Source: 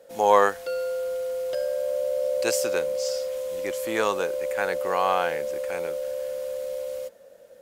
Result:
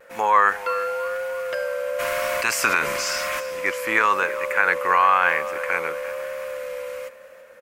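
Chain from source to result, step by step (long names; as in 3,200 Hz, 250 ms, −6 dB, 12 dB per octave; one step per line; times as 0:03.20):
0:01.98–0:03.39: ceiling on every frequency bin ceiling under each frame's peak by 18 dB
brickwall limiter −15 dBFS, peak gain reduction 10 dB
on a send: repeating echo 338 ms, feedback 50%, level −16.5 dB
on the sum: pitch vibrato 0.99 Hz 38 cents
flat-topped bell 1,600 Hz +14.5 dB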